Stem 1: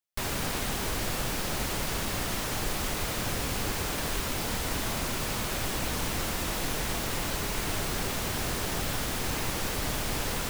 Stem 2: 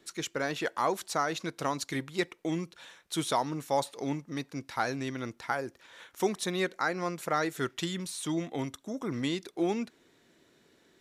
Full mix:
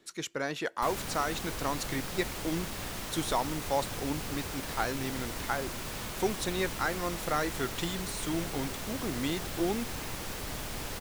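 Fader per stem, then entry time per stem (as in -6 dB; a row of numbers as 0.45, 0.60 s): -7.0, -1.5 dB; 0.65, 0.00 s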